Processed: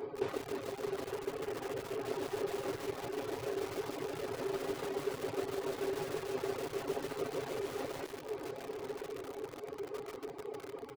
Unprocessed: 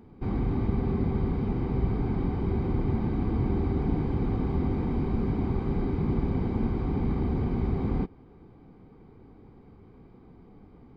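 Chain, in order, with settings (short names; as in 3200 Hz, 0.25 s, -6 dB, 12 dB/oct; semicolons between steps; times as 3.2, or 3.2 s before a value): tracing distortion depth 0.5 ms; compressor 16:1, threshold -40 dBFS, peak gain reduction 20 dB; 1.13–2.07 elliptic low-pass 3200 Hz; reverb removal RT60 1.1 s; HPF 110 Hz 12 dB/oct; resonant low shelf 300 Hz -12 dB, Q 3; on a send: diffused feedback echo 1.066 s, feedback 44%, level -5 dB; on the sum: reverb removal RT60 0.98 s; comb 7.3 ms, depth 60%; lo-fi delay 0.147 s, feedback 80%, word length 9-bit, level -3.5 dB; gain +11.5 dB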